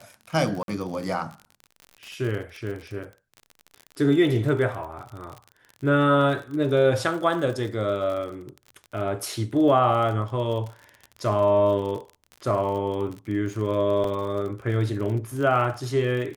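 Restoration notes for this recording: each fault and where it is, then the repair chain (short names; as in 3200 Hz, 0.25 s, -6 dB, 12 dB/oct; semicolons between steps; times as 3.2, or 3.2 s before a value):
crackle 45/s -32 dBFS
0.63–0.68 gap 52 ms
14.04 gap 3 ms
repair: de-click; interpolate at 0.63, 52 ms; interpolate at 14.04, 3 ms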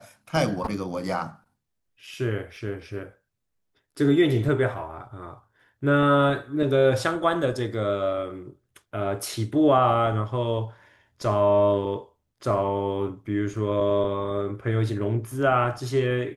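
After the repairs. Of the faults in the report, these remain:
none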